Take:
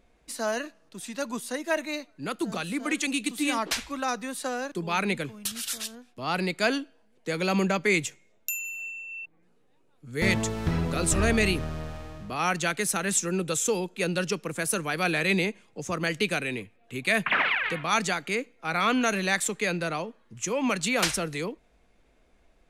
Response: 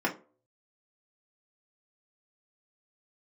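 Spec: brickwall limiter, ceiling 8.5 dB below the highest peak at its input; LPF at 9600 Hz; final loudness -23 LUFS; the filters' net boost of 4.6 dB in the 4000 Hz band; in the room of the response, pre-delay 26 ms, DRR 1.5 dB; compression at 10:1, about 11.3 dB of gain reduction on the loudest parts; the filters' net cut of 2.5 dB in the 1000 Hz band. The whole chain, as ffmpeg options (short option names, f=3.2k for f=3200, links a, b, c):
-filter_complex "[0:a]lowpass=9.6k,equalizer=f=1k:t=o:g=-4,equalizer=f=4k:t=o:g=6,acompressor=threshold=-30dB:ratio=10,alimiter=level_in=0.5dB:limit=-24dB:level=0:latency=1,volume=-0.5dB,asplit=2[a][b];[1:a]atrim=start_sample=2205,adelay=26[c];[b][c]afir=irnorm=-1:irlink=0,volume=-11.5dB[d];[a][d]amix=inputs=2:normalize=0,volume=10.5dB"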